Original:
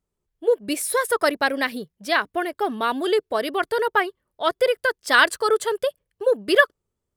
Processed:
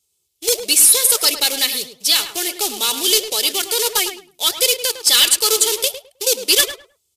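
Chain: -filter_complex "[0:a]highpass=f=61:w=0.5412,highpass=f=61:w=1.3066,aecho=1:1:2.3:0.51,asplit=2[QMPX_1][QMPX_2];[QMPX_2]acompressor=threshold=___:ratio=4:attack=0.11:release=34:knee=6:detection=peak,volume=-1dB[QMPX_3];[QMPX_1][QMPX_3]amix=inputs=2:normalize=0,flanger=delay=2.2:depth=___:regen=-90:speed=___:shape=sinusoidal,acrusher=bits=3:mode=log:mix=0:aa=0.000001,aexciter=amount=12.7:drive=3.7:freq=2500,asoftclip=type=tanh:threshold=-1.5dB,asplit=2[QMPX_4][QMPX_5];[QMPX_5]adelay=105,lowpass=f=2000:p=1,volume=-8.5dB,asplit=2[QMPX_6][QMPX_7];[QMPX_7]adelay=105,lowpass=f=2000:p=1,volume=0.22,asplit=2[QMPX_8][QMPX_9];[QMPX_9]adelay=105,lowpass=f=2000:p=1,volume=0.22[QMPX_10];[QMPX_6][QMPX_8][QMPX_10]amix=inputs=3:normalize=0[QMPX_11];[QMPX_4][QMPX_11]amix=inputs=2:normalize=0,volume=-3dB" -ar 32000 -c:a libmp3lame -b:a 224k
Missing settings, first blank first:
-26dB, 8.2, 1.5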